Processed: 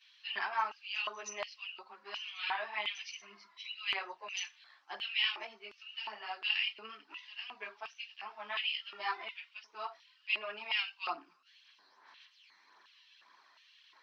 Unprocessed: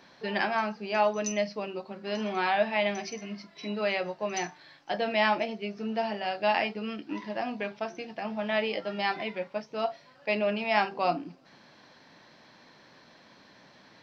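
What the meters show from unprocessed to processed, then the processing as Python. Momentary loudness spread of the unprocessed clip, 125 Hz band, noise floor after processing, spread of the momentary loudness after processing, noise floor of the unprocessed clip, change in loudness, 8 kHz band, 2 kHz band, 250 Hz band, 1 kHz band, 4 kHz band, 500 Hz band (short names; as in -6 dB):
11 LU, under -30 dB, -67 dBFS, 15 LU, -57 dBFS, -7.5 dB, n/a, -5.0 dB, -29.5 dB, -10.5 dB, +1.0 dB, -20.5 dB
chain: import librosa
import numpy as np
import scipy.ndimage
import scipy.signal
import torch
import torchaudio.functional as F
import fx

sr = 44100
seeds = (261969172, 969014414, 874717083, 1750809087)

y = fx.chorus_voices(x, sr, voices=4, hz=0.93, base_ms=12, depth_ms=3.0, mix_pct=70)
y = fx.filter_lfo_highpass(y, sr, shape='square', hz=1.4, low_hz=400.0, high_hz=2900.0, q=5.0)
y = fx.low_shelf_res(y, sr, hz=720.0, db=-13.5, q=3.0)
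y = y * 10.0 ** (-7.5 / 20.0)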